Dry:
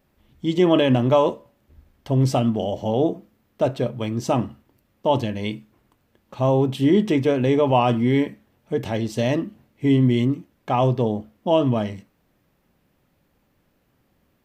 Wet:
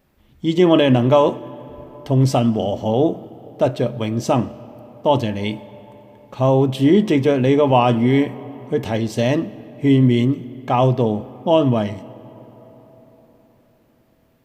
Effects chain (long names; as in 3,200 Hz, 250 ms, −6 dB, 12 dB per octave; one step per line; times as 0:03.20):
on a send: convolution reverb RT60 4.6 s, pre-delay 60 ms, DRR 19 dB
on the sum: level +3.5 dB